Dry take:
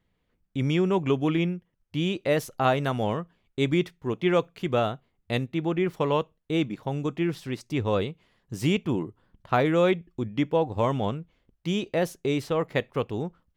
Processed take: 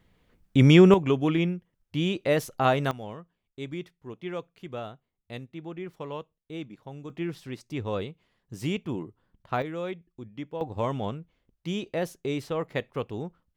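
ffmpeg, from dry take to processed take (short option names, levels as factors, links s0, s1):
-af "asetnsamples=n=441:p=0,asendcmd='0.94 volume volume 0dB;2.91 volume volume -12dB;7.1 volume volume -5.5dB;9.62 volume volume -12dB;10.61 volume volume -4dB',volume=2.82"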